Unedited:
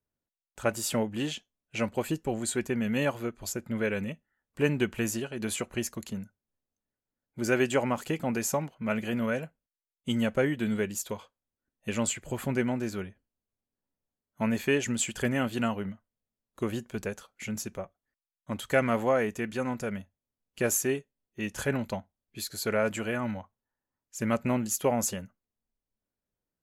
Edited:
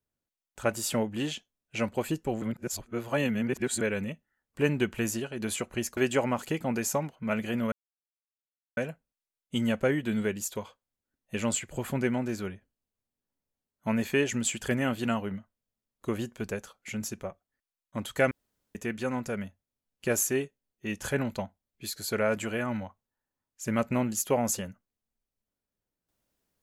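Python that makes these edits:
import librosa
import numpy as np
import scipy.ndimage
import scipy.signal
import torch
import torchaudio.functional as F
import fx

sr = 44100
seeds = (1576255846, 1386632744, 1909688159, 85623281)

y = fx.edit(x, sr, fx.reverse_span(start_s=2.42, length_s=1.39),
    fx.cut(start_s=5.97, length_s=1.59),
    fx.insert_silence(at_s=9.31, length_s=1.05),
    fx.room_tone_fill(start_s=18.85, length_s=0.44), tone=tone)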